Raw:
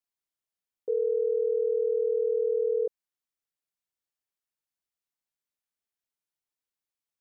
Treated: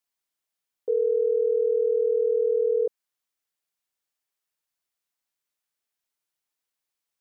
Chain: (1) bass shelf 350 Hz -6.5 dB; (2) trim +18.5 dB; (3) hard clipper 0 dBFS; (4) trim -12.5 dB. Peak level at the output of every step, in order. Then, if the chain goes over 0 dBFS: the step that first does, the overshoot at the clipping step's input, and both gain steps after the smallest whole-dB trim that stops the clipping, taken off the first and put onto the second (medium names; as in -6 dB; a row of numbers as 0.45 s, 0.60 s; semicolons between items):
-22.5 dBFS, -4.0 dBFS, -4.0 dBFS, -16.5 dBFS; nothing clips